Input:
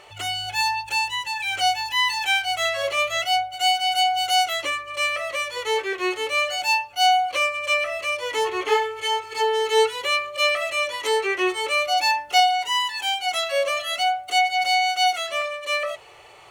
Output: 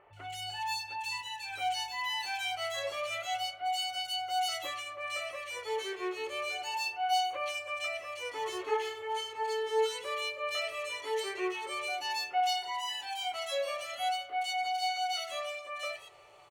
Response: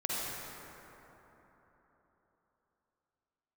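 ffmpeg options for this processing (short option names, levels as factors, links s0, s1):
-filter_complex "[0:a]flanger=delay=7.4:depth=6.2:regen=-59:speed=0.25:shape=sinusoidal,acrossover=split=2100[s0][s1];[s1]adelay=130[s2];[s0][s2]amix=inputs=2:normalize=0,asplit=2[s3][s4];[1:a]atrim=start_sample=2205,lowpass=2000,adelay=47[s5];[s4][s5]afir=irnorm=-1:irlink=0,volume=0.0708[s6];[s3][s6]amix=inputs=2:normalize=0,volume=0.447"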